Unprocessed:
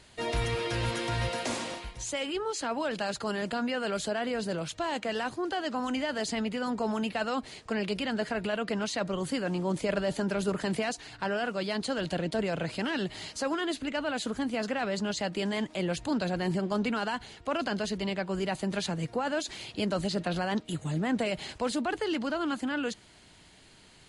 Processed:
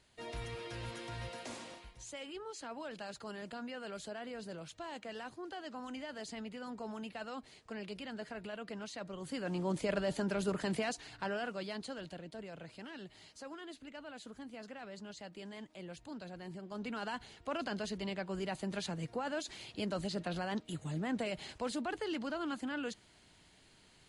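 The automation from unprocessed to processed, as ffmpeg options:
-af "volume=4.5dB,afade=t=in:st=9.19:d=0.42:silence=0.398107,afade=t=out:st=11:d=1.21:silence=0.251189,afade=t=in:st=16.66:d=0.48:silence=0.334965"

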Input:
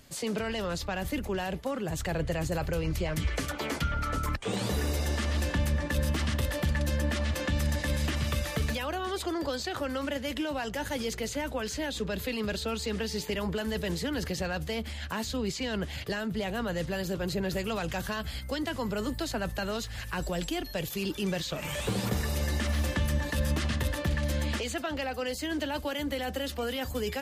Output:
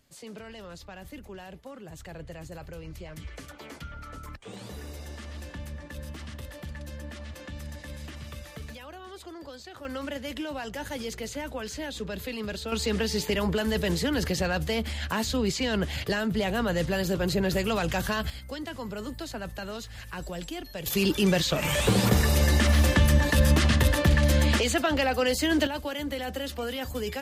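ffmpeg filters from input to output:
-af "asetnsamples=n=441:p=0,asendcmd='9.85 volume volume -2dB;12.72 volume volume 5dB;18.3 volume volume -4dB;20.86 volume volume 8dB;25.67 volume volume 0dB',volume=-11dB"

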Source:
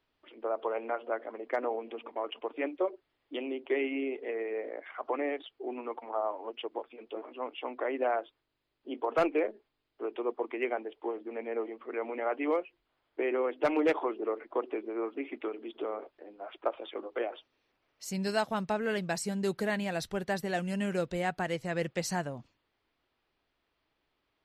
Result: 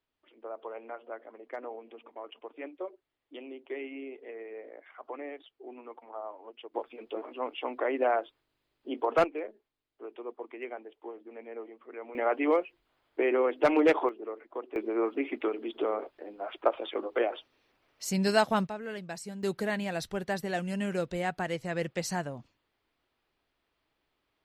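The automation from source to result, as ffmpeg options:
-af "asetnsamples=n=441:p=0,asendcmd='6.74 volume volume 3dB;9.24 volume volume -7.5dB;12.15 volume volume 4dB;14.09 volume volume -6dB;14.76 volume volume 5.5dB;18.67 volume volume -7dB;19.43 volume volume 0dB',volume=-8dB"

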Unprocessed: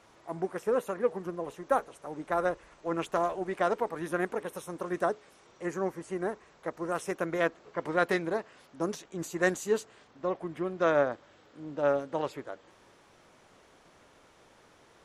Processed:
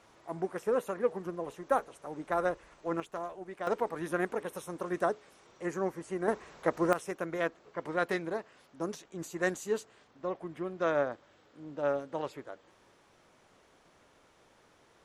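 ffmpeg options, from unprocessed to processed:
-af "asetnsamples=n=441:p=0,asendcmd='3 volume volume -10dB;3.67 volume volume -1dB;6.28 volume volume 6.5dB;6.93 volume volume -4dB',volume=-1.5dB"

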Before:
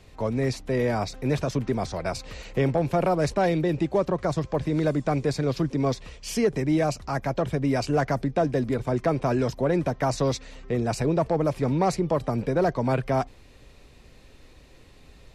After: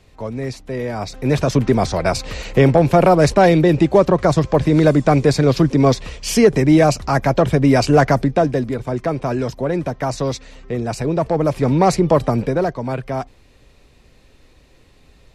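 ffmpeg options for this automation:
-af "volume=18.5dB,afade=t=in:st=0.94:d=0.65:silence=0.281838,afade=t=out:st=8.06:d=0.66:silence=0.398107,afade=t=in:st=11.01:d=1.16:silence=0.421697,afade=t=out:st=12.17:d=0.58:silence=0.316228"

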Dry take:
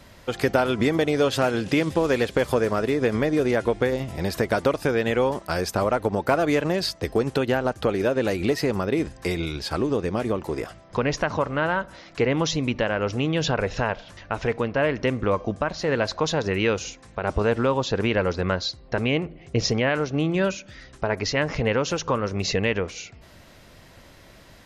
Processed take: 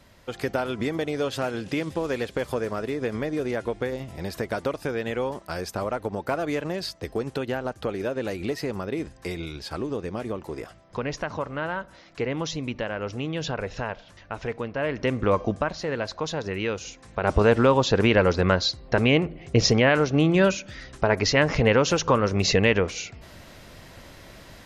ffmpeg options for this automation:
-af "volume=11dB,afade=t=in:st=14.78:d=0.64:silence=0.398107,afade=t=out:st=15.42:d=0.49:silence=0.421697,afade=t=in:st=16.81:d=0.54:silence=0.354813"

